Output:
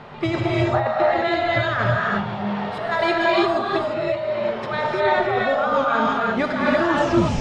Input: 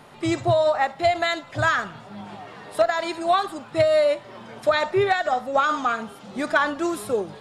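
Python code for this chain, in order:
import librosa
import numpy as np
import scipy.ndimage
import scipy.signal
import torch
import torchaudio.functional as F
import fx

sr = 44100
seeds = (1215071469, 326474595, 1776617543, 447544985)

y = fx.tape_stop_end(x, sr, length_s=0.52)
y = fx.peak_eq(y, sr, hz=300.0, db=-10.5, octaves=0.21)
y = fx.over_compress(y, sr, threshold_db=-27.0, ratio=-1.0)
y = fx.air_absorb(y, sr, metres=210.0)
y = fx.rev_gated(y, sr, seeds[0], gate_ms=370, shape='rising', drr_db=-3.5)
y = y * 10.0 ** (3.5 / 20.0)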